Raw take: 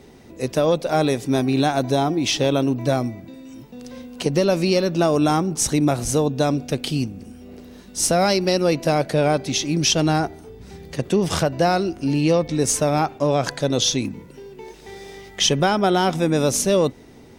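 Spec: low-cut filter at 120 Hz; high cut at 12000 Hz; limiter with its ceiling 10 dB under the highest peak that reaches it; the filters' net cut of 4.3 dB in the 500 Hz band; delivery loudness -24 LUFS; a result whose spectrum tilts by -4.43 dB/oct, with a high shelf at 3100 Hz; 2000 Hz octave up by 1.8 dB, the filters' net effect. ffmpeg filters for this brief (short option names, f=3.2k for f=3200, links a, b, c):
-af "highpass=120,lowpass=12k,equalizer=f=500:t=o:g=-5.5,equalizer=f=2k:t=o:g=4.5,highshelf=f=3.1k:g=-4,volume=2.5dB,alimiter=limit=-13dB:level=0:latency=1"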